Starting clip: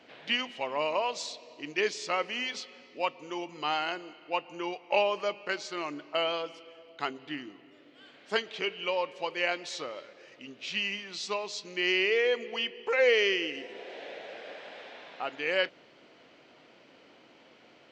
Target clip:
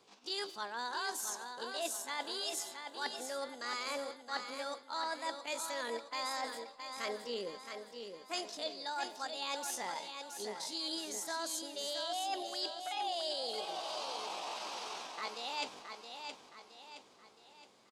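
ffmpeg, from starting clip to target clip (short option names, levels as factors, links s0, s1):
-filter_complex "[0:a]bass=f=250:g=8,treble=f=4000:g=7,asetrate=70004,aresample=44100,atempo=0.629961,acrossover=split=5100[s0][s1];[s1]acompressor=threshold=0.0282:ratio=4:attack=1:release=60[s2];[s0][s2]amix=inputs=2:normalize=0,agate=range=0.251:threshold=0.00398:ratio=16:detection=peak,areverse,acompressor=threshold=0.0126:ratio=6,areverse,lowshelf=f=150:g=5.5,aecho=1:1:669|1338|2007|2676|3345:0.447|0.197|0.0865|0.0381|0.0167,volume=1.12"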